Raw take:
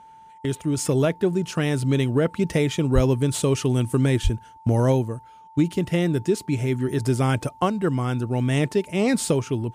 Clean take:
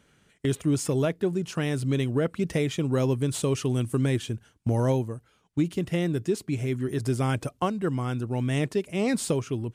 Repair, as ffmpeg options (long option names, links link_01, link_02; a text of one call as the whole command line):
ffmpeg -i in.wav -filter_complex "[0:a]bandreject=frequency=890:width=30,asplit=3[link_01][link_02][link_03];[link_01]afade=type=out:start_time=2.94:duration=0.02[link_04];[link_02]highpass=frequency=140:width=0.5412,highpass=frequency=140:width=1.3066,afade=type=in:start_time=2.94:duration=0.02,afade=type=out:start_time=3.06:duration=0.02[link_05];[link_03]afade=type=in:start_time=3.06:duration=0.02[link_06];[link_04][link_05][link_06]amix=inputs=3:normalize=0,asplit=3[link_07][link_08][link_09];[link_07]afade=type=out:start_time=4.23:duration=0.02[link_10];[link_08]highpass=frequency=140:width=0.5412,highpass=frequency=140:width=1.3066,afade=type=in:start_time=4.23:duration=0.02,afade=type=out:start_time=4.35:duration=0.02[link_11];[link_09]afade=type=in:start_time=4.35:duration=0.02[link_12];[link_10][link_11][link_12]amix=inputs=3:normalize=0,asetnsamples=nb_out_samples=441:pad=0,asendcmd='0.77 volume volume -4.5dB',volume=0dB" out.wav